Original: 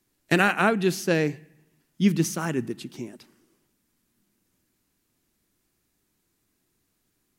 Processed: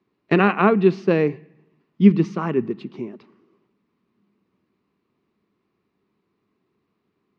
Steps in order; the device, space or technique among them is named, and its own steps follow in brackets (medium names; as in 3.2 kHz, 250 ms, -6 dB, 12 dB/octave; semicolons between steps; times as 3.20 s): guitar cabinet (cabinet simulation 100–3500 Hz, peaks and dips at 200 Hz +7 dB, 410 Hz +9 dB, 1.1 kHz +9 dB, 1.6 kHz -6 dB, 3.3 kHz -6 dB); trim +1.5 dB